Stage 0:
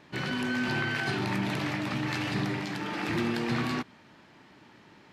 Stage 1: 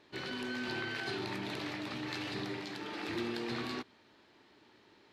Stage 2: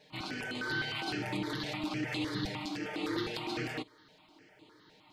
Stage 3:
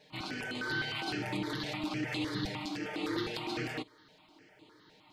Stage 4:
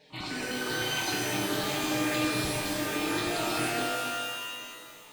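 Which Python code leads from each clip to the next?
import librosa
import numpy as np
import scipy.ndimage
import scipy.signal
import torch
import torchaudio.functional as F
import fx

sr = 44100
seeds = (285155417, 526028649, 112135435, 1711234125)

y1 = fx.graphic_eq_15(x, sr, hz=(160, 400, 4000), db=(-9, 6, 7))
y1 = y1 * 10.0 ** (-9.0 / 20.0)
y2 = y1 + 0.85 * np.pad(y1, (int(6.5 * sr / 1000.0), 0))[:len(y1)]
y2 = fx.phaser_held(y2, sr, hz=9.8, low_hz=320.0, high_hz=5600.0)
y2 = y2 * 10.0 ** (3.5 / 20.0)
y3 = y2
y4 = fx.rev_shimmer(y3, sr, seeds[0], rt60_s=1.9, semitones=12, shimmer_db=-2, drr_db=0.0)
y4 = y4 * 10.0 ** (1.5 / 20.0)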